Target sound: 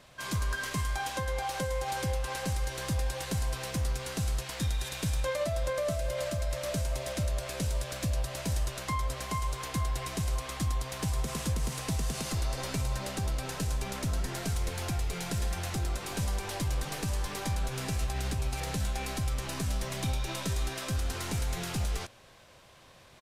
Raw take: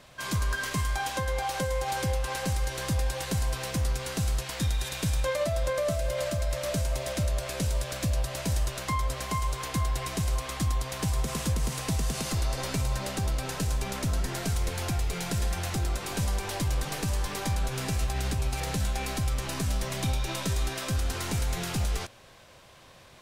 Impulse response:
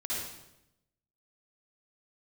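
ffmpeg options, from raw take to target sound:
-af "aresample=32000,aresample=44100,volume=-3dB"

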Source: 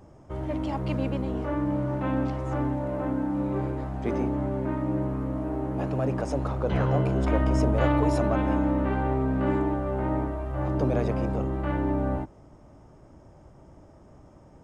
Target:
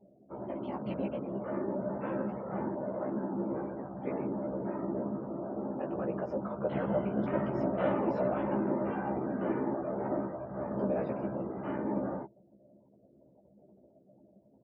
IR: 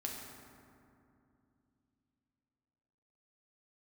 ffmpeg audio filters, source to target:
-filter_complex "[0:a]afftfilt=real='re*gte(hypot(re,im),0.00708)':imag='im*gte(hypot(re,im),0.00708)':win_size=1024:overlap=0.75,afftfilt=real='hypot(re,im)*cos(2*PI*random(0))':imag='hypot(re,im)*sin(2*PI*random(1))':win_size=512:overlap=0.75,highpass=170,equalizer=f=200:t=q:w=4:g=7,equalizer=f=360:t=q:w=4:g=4,equalizer=f=590:t=q:w=4:g=8,equalizer=f=900:t=q:w=4:g=3,equalizer=f=1.4k:t=q:w=4:g=3,lowpass=f=3.9k:w=0.5412,lowpass=f=3.9k:w=1.3066,asplit=2[a][b];[b]adelay=15,volume=-3dB[c];[a][c]amix=inputs=2:normalize=0,volume=-5.5dB"

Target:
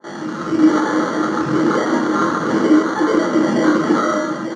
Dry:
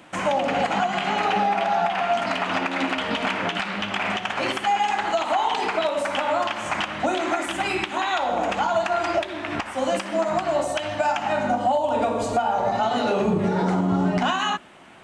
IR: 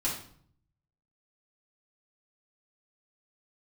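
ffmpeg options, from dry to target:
-filter_complex "[0:a]alimiter=limit=-18.5dB:level=0:latency=1,dynaudnorm=f=240:g=13:m=11dB,asetrate=145530,aresample=44100,aecho=1:1:895:0.398,flanger=delay=20:depth=6.5:speed=0.21,acrusher=samples=17:mix=1:aa=0.000001,highpass=f=170:w=0.5412,highpass=f=170:w=1.3066,equalizer=f=310:t=q:w=4:g=9,equalizer=f=460:t=q:w=4:g=4,equalizer=f=690:t=q:w=4:g=-8,equalizer=f=1.3k:t=q:w=4:g=6,equalizer=f=2.5k:t=q:w=4:g=-8,equalizer=f=3.8k:t=q:w=4:g=-8,lowpass=f=5.8k:w=0.5412,lowpass=f=5.8k:w=1.3066,asplit=2[a][b];[1:a]atrim=start_sample=2205,highshelf=f=5.7k:g=8.5[c];[b][c]afir=irnorm=-1:irlink=0,volume=-7.5dB[d];[a][d]amix=inputs=2:normalize=0,adynamicequalizer=threshold=0.0501:dfrequency=1800:dqfactor=0.7:tfrequency=1800:tqfactor=0.7:attack=5:release=100:ratio=0.375:range=2:mode=cutabove:tftype=highshelf,volume=-3.5dB"

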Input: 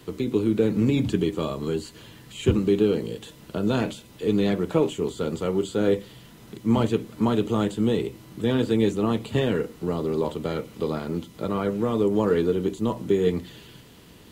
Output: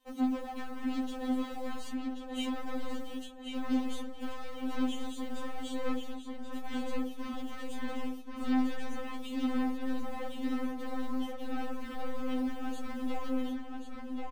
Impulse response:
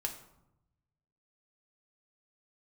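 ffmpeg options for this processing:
-filter_complex "[0:a]agate=range=-25dB:threshold=-39dB:ratio=16:detection=peak,aecho=1:1:4.2:0.44,adynamicequalizer=threshold=0.0316:dfrequency=310:dqfactor=0.95:tfrequency=310:tqfactor=0.95:attack=5:release=100:ratio=0.375:range=2:mode=cutabove:tftype=bell,acrossover=split=320[a][b];[b]acompressor=threshold=-55dB:ratio=1.5[c];[a][c]amix=inputs=2:normalize=0,aeval=exprs='(tanh(70.8*val(0)+0.1)-tanh(0.1))/70.8':c=same,acrossover=split=3000[d][e];[d]acrusher=bits=6:mode=log:mix=0:aa=0.000001[f];[f][e]amix=inputs=2:normalize=0,asplit=2[g][h];[h]adelay=1083,lowpass=f=3.9k:p=1,volume=-3dB,asplit=2[i][j];[j]adelay=1083,lowpass=f=3.9k:p=1,volume=0.42,asplit=2[k][l];[l]adelay=1083,lowpass=f=3.9k:p=1,volume=0.42,asplit=2[m][n];[n]adelay=1083,lowpass=f=3.9k:p=1,volume=0.42,asplit=2[o][p];[p]adelay=1083,lowpass=f=3.9k:p=1,volume=0.42[q];[g][i][k][m][o][q]amix=inputs=6:normalize=0,asplit=2[r][s];[1:a]atrim=start_sample=2205[t];[s][t]afir=irnorm=-1:irlink=0,volume=-11.5dB[u];[r][u]amix=inputs=2:normalize=0,afftfilt=real='re*3.46*eq(mod(b,12),0)':imag='im*3.46*eq(mod(b,12),0)':win_size=2048:overlap=0.75,volume=3.5dB"

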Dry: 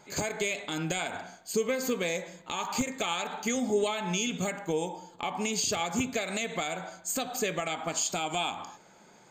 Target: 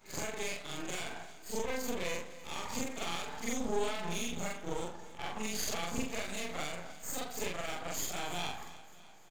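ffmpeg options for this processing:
-af "afftfilt=real='re':imag='-im':win_size=4096:overlap=0.75,aeval=exprs='max(val(0),0)':c=same,aecho=1:1:300|600|900|1200|1500:0.133|0.0773|0.0449|0.026|0.0151,volume=1.5dB"

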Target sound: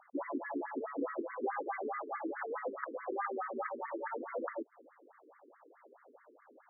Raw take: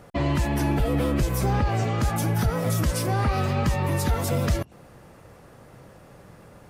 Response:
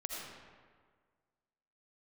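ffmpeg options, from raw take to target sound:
-filter_complex "[0:a]asettb=1/sr,asplit=3[a][b][c];[a]atrim=end=0.934[d];[b]atrim=start=0.93:end=2.86,asetpts=PTS-STARTPTS,afade=t=in:d=0.004:c=qsin,afade=t=out:st=1.926:d=0.004:c=qsin,lowpass=f=3.3k:t=q:w=4.9[e];[c]atrim=start=2.856[f];[d][e]acrossfade=d=0.004:c1=hsin:c2=qsin[g];[g][f]acrossfade=d=0.004:c1=qsin:c2=hsin,afftfilt=real='re*between(b*sr/1024,320*pow(1600/320,0.5+0.5*sin(2*PI*4.7*pts/sr))/1.41,320*pow(1600/320,0.5+0.5*sin(2*PI*4.7*pts/sr))*1.41)':imag='im*between(b*sr/1024,320*pow(1600/320,0.5+0.5*sin(2*PI*4.7*pts/sr))/1.41,320*pow(1600/320,0.5+0.5*sin(2*PI*4.7*pts/sr))*1.41)':win_size=1024:overlap=0.75,volume=-4.5dB"

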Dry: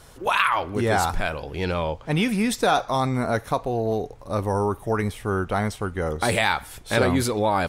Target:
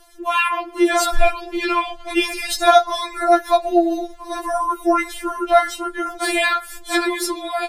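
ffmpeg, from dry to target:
-filter_complex "[0:a]dynaudnorm=f=160:g=5:m=11.5dB,asplit=3[a][b][c];[a]afade=t=out:st=0.92:d=0.02[d];[b]aphaser=in_gain=1:out_gain=1:delay=1.8:decay=0.35:speed=1.3:type=triangular,afade=t=in:st=0.92:d=0.02,afade=t=out:st=3.21:d=0.02[e];[c]afade=t=in:st=3.21:d=0.02[f];[d][e][f]amix=inputs=3:normalize=0,afftfilt=real='re*4*eq(mod(b,16),0)':imag='im*4*eq(mod(b,16),0)':win_size=2048:overlap=0.75,volume=1dB"

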